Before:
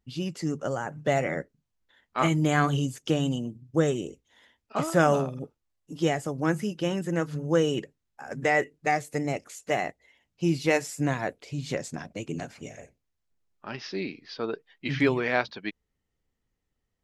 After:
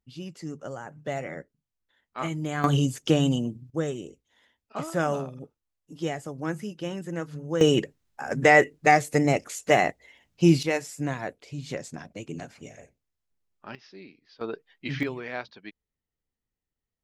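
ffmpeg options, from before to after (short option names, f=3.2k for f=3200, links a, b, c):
-af "asetnsamples=n=441:p=0,asendcmd='2.64 volume volume 4dB;3.7 volume volume -5dB;7.61 volume volume 7dB;10.63 volume volume -3dB;13.75 volume volume -14dB;14.41 volume volume -2dB;15.03 volume volume -9dB',volume=-7dB"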